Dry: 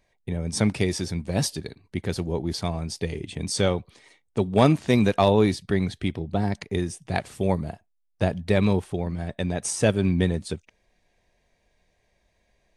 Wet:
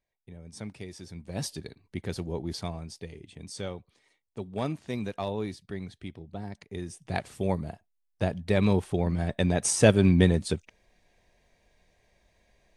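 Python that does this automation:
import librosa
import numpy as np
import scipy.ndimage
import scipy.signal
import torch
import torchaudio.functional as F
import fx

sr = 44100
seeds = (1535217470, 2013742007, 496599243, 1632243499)

y = fx.gain(x, sr, db=fx.line((0.91, -17.5), (1.58, -6.0), (2.6, -6.0), (3.13, -13.5), (6.65, -13.5), (7.07, -4.5), (8.44, -4.5), (9.09, 2.0)))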